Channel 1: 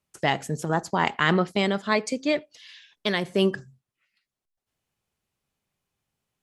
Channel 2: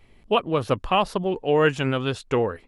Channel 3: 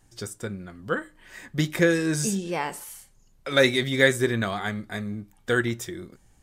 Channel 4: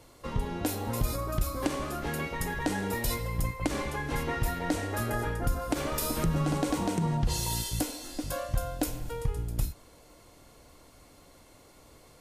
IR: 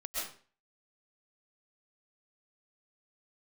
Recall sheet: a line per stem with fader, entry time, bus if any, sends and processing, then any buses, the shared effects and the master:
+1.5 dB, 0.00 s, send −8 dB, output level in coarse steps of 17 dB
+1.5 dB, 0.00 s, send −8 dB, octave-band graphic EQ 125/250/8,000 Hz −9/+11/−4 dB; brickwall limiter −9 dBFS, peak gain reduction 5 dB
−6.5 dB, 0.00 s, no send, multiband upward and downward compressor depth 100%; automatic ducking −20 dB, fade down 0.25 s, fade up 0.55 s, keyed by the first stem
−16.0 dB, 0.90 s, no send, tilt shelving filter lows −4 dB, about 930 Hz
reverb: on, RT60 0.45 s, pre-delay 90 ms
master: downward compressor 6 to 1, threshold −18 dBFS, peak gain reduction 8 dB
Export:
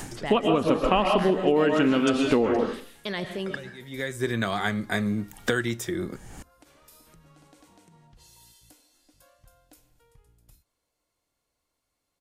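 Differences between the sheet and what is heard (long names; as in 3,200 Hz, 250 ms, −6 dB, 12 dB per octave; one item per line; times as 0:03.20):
stem 2: send −8 dB → −1.5 dB
stem 3 −6.5 dB → −0.5 dB
stem 4 −16.0 dB → −25.0 dB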